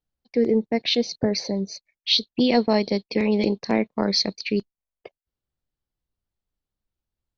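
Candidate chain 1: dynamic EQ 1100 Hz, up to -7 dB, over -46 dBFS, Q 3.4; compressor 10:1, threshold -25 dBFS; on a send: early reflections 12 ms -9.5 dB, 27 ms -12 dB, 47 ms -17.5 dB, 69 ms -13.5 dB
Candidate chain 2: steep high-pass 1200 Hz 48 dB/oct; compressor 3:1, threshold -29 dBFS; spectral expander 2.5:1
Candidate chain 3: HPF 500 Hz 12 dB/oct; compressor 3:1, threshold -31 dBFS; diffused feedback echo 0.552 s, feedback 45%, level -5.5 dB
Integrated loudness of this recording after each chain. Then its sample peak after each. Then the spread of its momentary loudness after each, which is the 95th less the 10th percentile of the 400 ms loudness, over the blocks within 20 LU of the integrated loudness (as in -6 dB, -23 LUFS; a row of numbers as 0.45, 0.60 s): -30.0, -35.5, -33.0 LUFS; -14.0, -17.0, -17.5 dBFS; 8, 16, 14 LU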